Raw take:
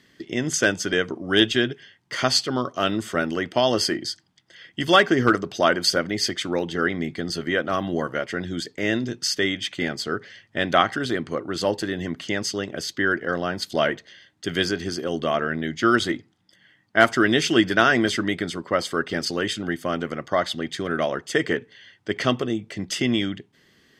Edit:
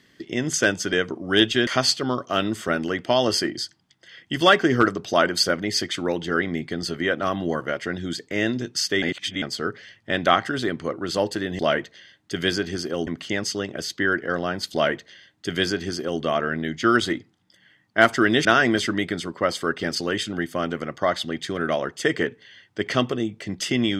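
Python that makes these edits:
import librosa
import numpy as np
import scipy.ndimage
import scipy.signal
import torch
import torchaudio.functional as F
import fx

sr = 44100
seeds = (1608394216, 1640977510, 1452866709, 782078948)

y = fx.edit(x, sr, fx.cut(start_s=1.67, length_s=0.47),
    fx.reverse_span(start_s=9.49, length_s=0.4),
    fx.duplicate(start_s=13.72, length_s=1.48, to_s=12.06),
    fx.cut(start_s=17.44, length_s=0.31), tone=tone)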